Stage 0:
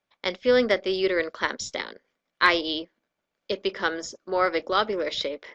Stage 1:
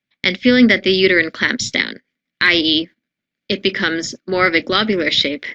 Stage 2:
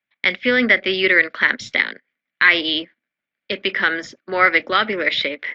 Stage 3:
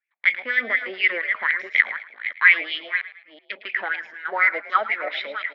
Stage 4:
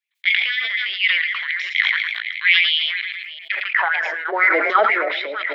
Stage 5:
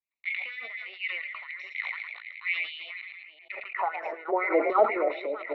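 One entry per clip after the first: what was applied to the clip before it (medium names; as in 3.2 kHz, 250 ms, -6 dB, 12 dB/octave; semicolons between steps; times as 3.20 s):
gate -45 dBFS, range -14 dB; graphic EQ 125/250/500/1000/2000/4000 Hz +11/+11/-4/-9/+11/+6 dB; loudness maximiser +8.5 dB; trim -1 dB
three-band isolator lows -14 dB, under 550 Hz, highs -19 dB, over 2.9 kHz; endings held to a fixed fall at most 590 dB/s; trim +2.5 dB
chunks repeated in reverse 339 ms, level -9 dB; wah-wah 4.1 Hz 670–2400 Hz, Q 4.9; frequency-shifting echo 109 ms, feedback 40%, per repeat +52 Hz, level -16 dB; trim +3.5 dB
high-pass sweep 3.2 kHz -> 360 Hz, 3.24–4.33 s; on a send at -20.5 dB: reverberation RT60 0.40 s, pre-delay 3 ms; on the sum: decay stretcher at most 31 dB/s; trim +1.5 dB
boxcar filter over 27 samples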